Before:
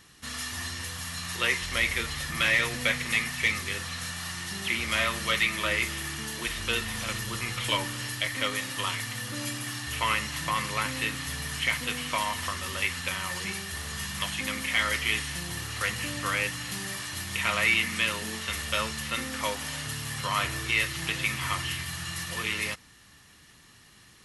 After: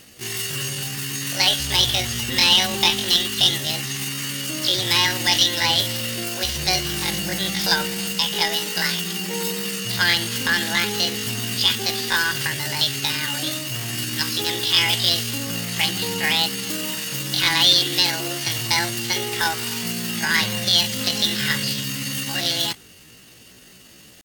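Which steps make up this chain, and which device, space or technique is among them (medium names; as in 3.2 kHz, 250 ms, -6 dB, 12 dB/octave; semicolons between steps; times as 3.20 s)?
chipmunk voice (pitch shift +8 st); trim +8.5 dB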